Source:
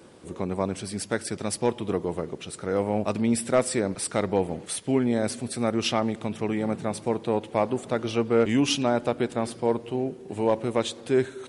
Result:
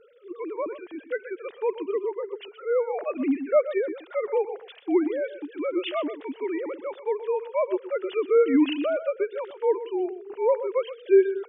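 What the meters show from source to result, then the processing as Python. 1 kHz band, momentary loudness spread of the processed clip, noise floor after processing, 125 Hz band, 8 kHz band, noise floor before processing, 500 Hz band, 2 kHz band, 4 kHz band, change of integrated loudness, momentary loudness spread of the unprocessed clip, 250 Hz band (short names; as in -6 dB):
-4.0 dB, 12 LU, -51 dBFS, under -30 dB, under -40 dB, -45 dBFS, +2.5 dB, -2.5 dB, -8.5 dB, 0.0 dB, 7 LU, -2.0 dB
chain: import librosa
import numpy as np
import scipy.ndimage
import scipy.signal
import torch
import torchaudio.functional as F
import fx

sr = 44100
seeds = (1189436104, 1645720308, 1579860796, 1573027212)

y = fx.sine_speech(x, sr)
y = y + 10.0 ** (-13.0 / 20.0) * np.pad(y, (int(125 * sr / 1000.0), 0))[:len(y)]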